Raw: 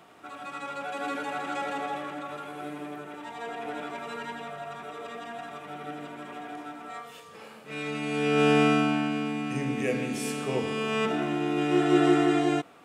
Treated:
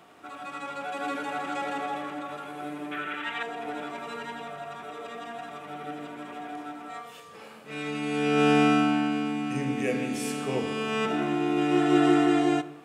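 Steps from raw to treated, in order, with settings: 2.91–3.43 s: high-order bell 2.1 kHz +14 dB; on a send: reverberation RT60 0.90 s, pre-delay 3 ms, DRR 13.5 dB

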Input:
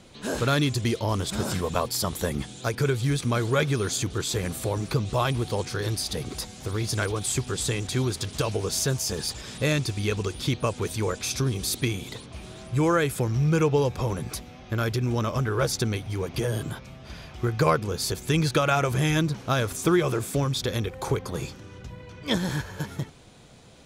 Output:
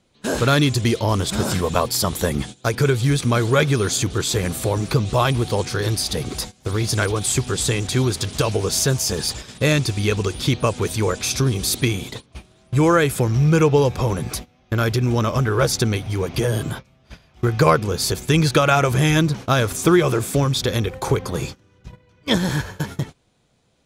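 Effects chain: gate -37 dBFS, range -19 dB; trim +6.5 dB

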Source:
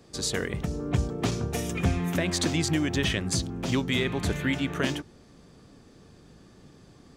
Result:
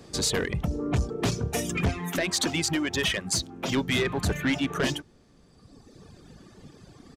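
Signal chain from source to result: reverb removal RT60 1.7 s; 1.89–3.77 s: bass shelf 250 Hz -10.5 dB; saturation -26 dBFS, distortion -10 dB; resampled via 32 kHz; trim +6.5 dB

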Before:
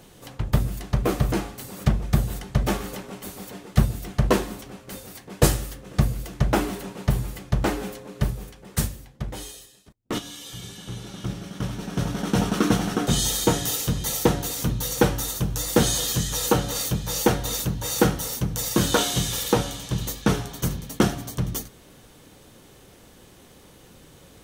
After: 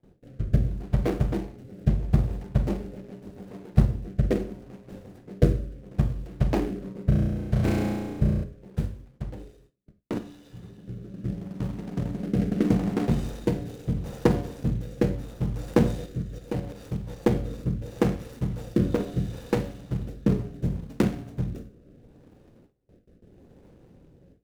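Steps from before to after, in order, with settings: median filter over 41 samples; rotary cabinet horn 0.75 Hz; 7.06–8.44 s: flutter echo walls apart 5.8 m, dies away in 1.4 s; 16.06–17.27 s: level held to a coarse grid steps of 9 dB; Schroeder reverb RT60 0.4 s, combs from 31 ms, DRR 10.5 dB; gate with hold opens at -45 dBFS

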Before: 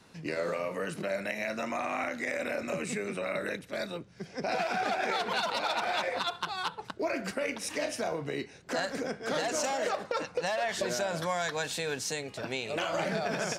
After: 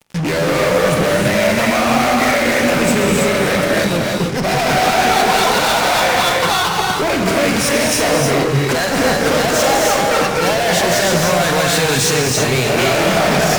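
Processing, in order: bass shelf 150 Hz +9.5 dB; fuzz box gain 43 dB, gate -49 dBFS; gated-style reverb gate 350 ms rising, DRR -1 dB; trim -3 dB

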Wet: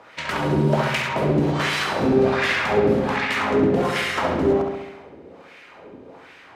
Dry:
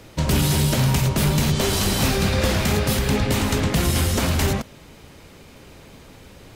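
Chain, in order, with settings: wah-wah 1.3 Hz 320–2200 Hz, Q 2.4; filtered feedback delay 68 ms, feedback 63%, low-pass 5 kHz, level -4 dB; trim +9 dB

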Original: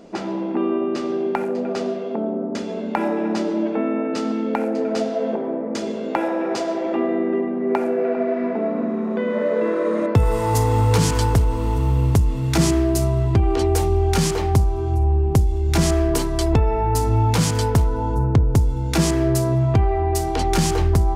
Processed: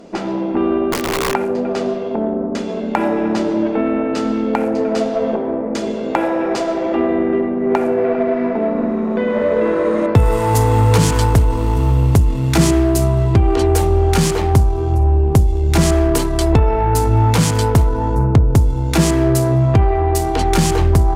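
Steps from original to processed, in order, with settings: dynamic bell 5.3 kHz, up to -3 dB, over -44 dBFS, Q 2; Chebyshev shaper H 8 -29 dB, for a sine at -6 dBFS; 0.92–1.34 s: integer overflow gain 18 dB; trim +4.5 dB

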